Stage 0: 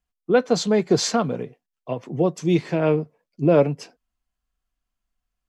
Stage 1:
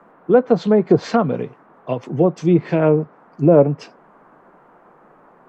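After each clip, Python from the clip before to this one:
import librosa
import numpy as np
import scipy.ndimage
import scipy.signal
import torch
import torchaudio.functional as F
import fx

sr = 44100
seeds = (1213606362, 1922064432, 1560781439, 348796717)

y = fx.env_lowpass_down(x, sr, base_hz=1000.0, full_db=-14.0)
y = fx.dmg_noise_band(y, sr, seeds[0], low_hz=150.0, high_hz=1300.0, level_db=-55.0)
y = y * 10.0 ** (5.0 / 20.0)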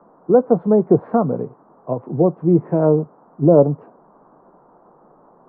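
y = scipy.signal.sosfilt(scipy.signal.butter(4, 1100.0, 'lowpass', fs=sr, output='sos'), x)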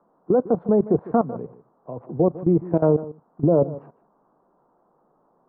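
y = fx.level_steps(x, sr, step_db=16)
y = y + 10.0 ** (-17.0 / 20.0) * np.pad(y, (int(152 * sr / 1000.0), 0))[:len(y)]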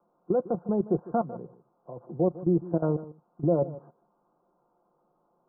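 y = scipy.signal.sosfilt(scipy.signal.ellip(4, 1.0, 40, 1500.0, 'lowpass', fs=sr, output='sos'), x)
y = y + 0.43 * np.pad(y, (int(5.7 * sr / 1000.0), 0))[:len(y)]
y = y * 10.0 ** (-7.5 / 20.0)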